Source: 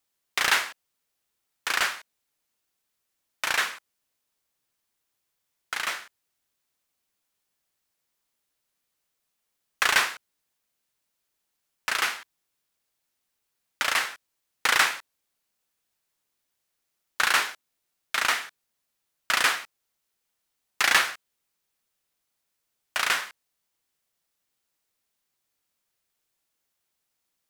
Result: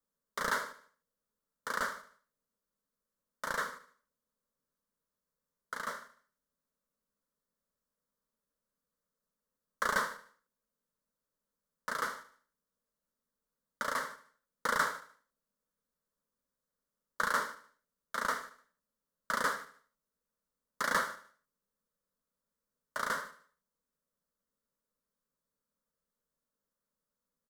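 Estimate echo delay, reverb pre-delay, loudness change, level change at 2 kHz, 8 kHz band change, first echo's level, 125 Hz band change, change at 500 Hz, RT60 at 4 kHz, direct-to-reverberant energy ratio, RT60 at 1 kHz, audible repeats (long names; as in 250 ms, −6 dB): 75 ms, no reverb audible, −10.5 dB, −11.0 dB, −13.0 dB, −15.0 dB, can't be measured, −1.5 dB, no reverb audible, no reverb audible, no reverb audible, 3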